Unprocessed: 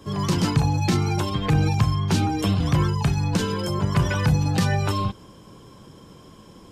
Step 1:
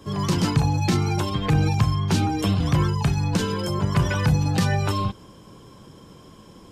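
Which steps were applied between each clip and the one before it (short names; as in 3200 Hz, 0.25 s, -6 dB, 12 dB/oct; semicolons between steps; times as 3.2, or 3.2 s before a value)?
nothing audible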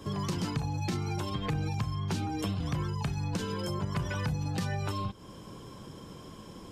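compressor 3:1, threshold -33 dBFS, peak gain reduction 14 dB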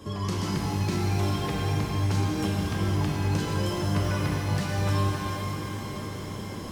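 analogue delay 0.361 s, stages 4096, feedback 79%, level -21 dB; vocal rider within 4 dB; shimmer reverb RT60 3.8 s, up +12 st, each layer -8 dB, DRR -3 dB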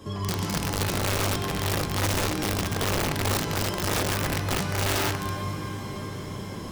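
wrapped overs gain 20.5 dB; reverb, pre-delay 3 ms, DRR 11.5 dB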